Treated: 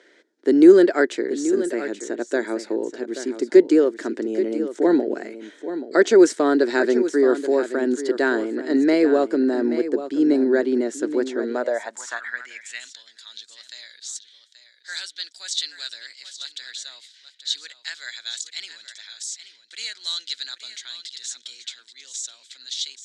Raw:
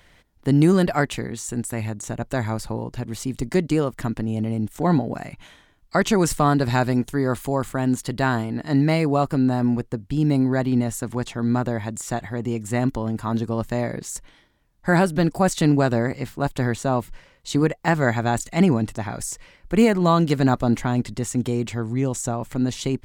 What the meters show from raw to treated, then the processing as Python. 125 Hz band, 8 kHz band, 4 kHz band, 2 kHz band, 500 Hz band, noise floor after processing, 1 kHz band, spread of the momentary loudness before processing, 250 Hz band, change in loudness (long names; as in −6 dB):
below −25 dB, −1.0 dB, +6.0 dB, 0.0 dB, +4.5 dB, −56 dBFS, −7.5 dB, 11 LU, −0.5 dB, +1.5 dB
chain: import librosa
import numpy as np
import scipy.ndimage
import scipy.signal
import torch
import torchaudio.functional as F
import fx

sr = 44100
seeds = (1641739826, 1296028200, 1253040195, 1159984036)

y = fx.wow_flutter(x, sr, seeds[0], rate_hz=2.1, depth_cents=24.0)
y = fx.cabinet(y, sr, low_hz=230.0, low_slope=24, high_hz=7500.0, hz=(790.0, 1100.0, 1600.0, 2700.0), db=(-9, -10, 6, -7))
y = y + 10.0 ** (-11.5 / 20.0) * np.pad(y, (int(830 * sr / 1000.0), 0))[:len(y)]
y = fx.filter_sweep_highpass(y, sr, from_hz=360.0, to_hz=3700.0, start_s=11.37, end_s=12.94, q=3.7)